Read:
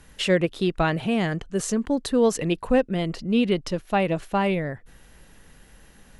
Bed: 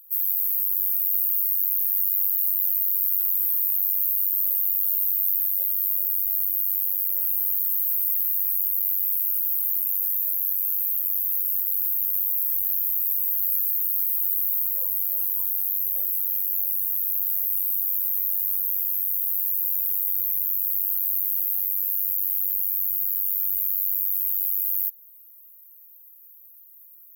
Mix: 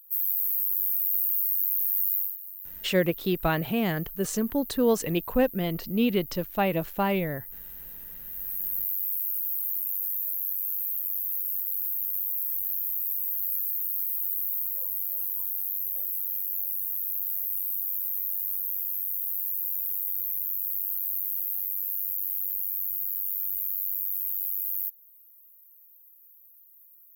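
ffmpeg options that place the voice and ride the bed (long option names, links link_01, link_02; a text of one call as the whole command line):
ffmpeg -i stem1.wav -i stem2.wav -filter_complex "[0:a]adelay=2650,volume=-3dB[link_01];[1:a]volume=10dB,afade=type=out:start_time=2.14:duration=0.24:silence=0.16788,afade=type=in:start_time=8.22:duration=0.53:silence=0.223872[link_02];[link_01][link_02]amix=inputs=2:normalize=0" out.wav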